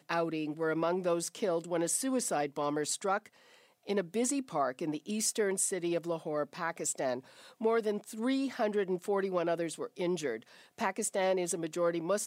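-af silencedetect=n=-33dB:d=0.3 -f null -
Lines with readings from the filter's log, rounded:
silence_start: 3.18
silence_end: 3.89 | silence_duration: 0.71
silence_start: 7.19
silence_end: 7.62 | silence_duration: 0.43
silence_start: 10.37
silence_end: 10.81 | silence_duration: 0.44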